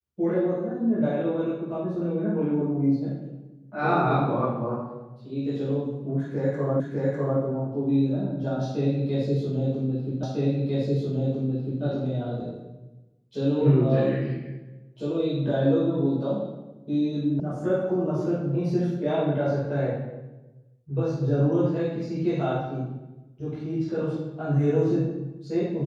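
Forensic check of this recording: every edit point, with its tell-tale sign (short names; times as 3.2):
6.8 repeat of the last 0.6 s
10.23 repeat of the last 1.6 s
17.4 sound cut off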